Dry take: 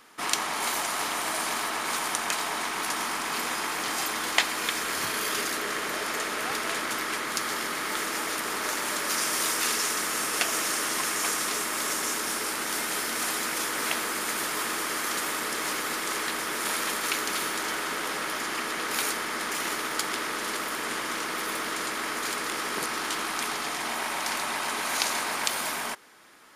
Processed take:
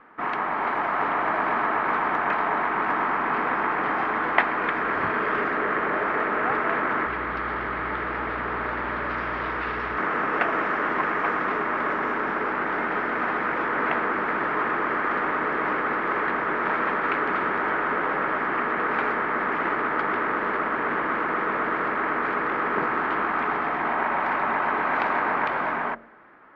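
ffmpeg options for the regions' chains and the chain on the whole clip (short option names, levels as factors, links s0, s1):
-filter_complex "[0:a]asettb=1/sr,asplit=3[s0][s1][s2];[s0]atrim=end=7.064[s3];[s1]atrim=start=7.06:end=9.98,asetpts=PTS-STARTPTS,afade=t=in:d=0.004:c=qsin,afade=t=out:st=2.916:d=0.004:c=qsin,highshelf=f=5900:t=q:w=1.5:g=-7.5,acrossover=split=150|3000[s4][s5][s6];[s5]acompressor=threshold=0.02:ratio=2.5:attack=3.2:release=140:knee=2.83:detection=peak[s7];[s4][s7][s6]amix=inputs=3:normalize=0,aeval=exprs='val(0)+0.00355*(sin(2*PI*60*n/s)+sin(2*PI*2*60*n/s)/2+sin(2*PI*3*60*n/s)/3+sin(2*PI*4*60*n/s)/4+sin(2*PI*5*60*n/s)/5)':c=same[s8];[s2]atrim=start=9.976[s9];[s3][s8]acrossfade=d=0.004:c1=hsin:c2=qsin[s10];[s10][s9]acrossfade=d=0.004:c1=qsin:c2=hsin,lowpass=f=1800:w=0.5412,lowpass=f=1800:w=1.3066,bandreject=f=45.82:t=h:w=4,bandreject=f=91.64:t=h:w=4,bandreject=f=137.46:t=h:w=4,bandreject=f=183.28:t=h:w=4,bandreject=f=229.1:t=h:w=4,bandreject=f=274.92:t=h:w=4,bandreject=f=320.74:t=h:w=4,bandreject=f=366.56:t=h:w=4,bandreject=f=412.38:t=h:w=4,bandreject=f=458.2:t=h:w=4,bandreject=f=504.02:t=h:w=4,bandreject=f=549.84:t=h:w=4,bandreject=f=595.66:t=h:w=4,bandreject=f=641.48:t=h:w=4,bandreject=f=687.3:t=h:w=4,dynaudnorm=f=180:g=9:m=1.41,volume=1.88"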